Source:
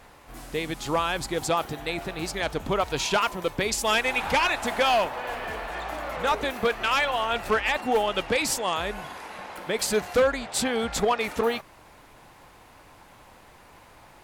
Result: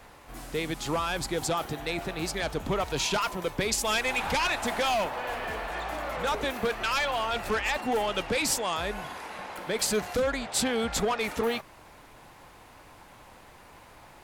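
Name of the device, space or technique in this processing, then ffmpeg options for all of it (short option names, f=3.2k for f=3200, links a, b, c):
one-band saturation: -filter_complex "[0:a]acrossover=split=240|3900[a][b][c];[b]asoftclip=type=tanh:threshold=-23.5dB[d];[a][d][c]amix=inputs=3:normalize=0"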